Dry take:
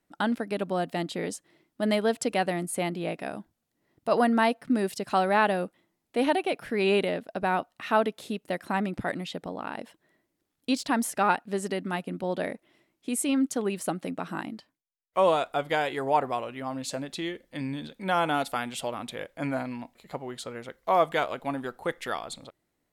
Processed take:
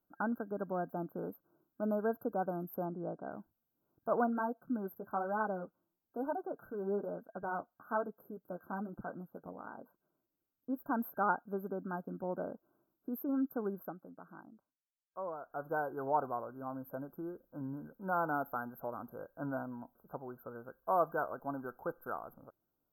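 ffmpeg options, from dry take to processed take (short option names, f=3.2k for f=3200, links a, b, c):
-filter_complex "[0:a]asettb=1/sr,asplit=3[a][b][c];[a]atrim=end=2.854[d];[b]atrim=start=2.85:end=3.31,asetpts=PTS-STARTPTS,afade=t=in:d=0.004:c=qsin,afade=t=out:st=0.456:d=0.004:c=qsin,lowpass=1.6k[e];[c]atrim=start=3.306[f];[d][e]acrossfade=d=0.004:c1=hsin:c2=qsin[g];[g][f]acrossfade=d=0.004:c1=qsin:c2=hsin,asplit=3[h][i][j];[h]afade=t=out:st=4.26:d=0.02[k];[i]flanger=delay=3.9:depth=8.4:regen=-33:speed=1.1:shape=triangular,afade=t=in:st=4.26:d=0.02,afade=t=out:st=10.77:d=0.02[l];[j]afade=t=in:st=10.77:d=0.02[m];[k][l][m]amix=inputs=3:normalize=0,asplit=3[n][o][p];[n]atrim=end=14.09,asetpts=PTS-STARTPTS,afade=t=out:st=13.74:d=0.35:c=qua:silence=0.281838[q];[o]atrim=start=14.09:end=15.35,asetpts=PTS-STARTPTS,volume=-11dB[r];[p]atrim=start=15.35,asetpts=PTS-STARTPTS,afade=t=in:d=0.35:c=qua:silence=0.281838[s];[q][r][s]concat=n=3:v=0:a=1,afftfilt=real='re*(1-between(b*sr/4096,1600,12000))':imag='im*(1-between(b*sr/4096,1600,12000))':win_size=4096:overlap=0.75,highshelf=f=3.6k:g=11,volume=-8.5dB"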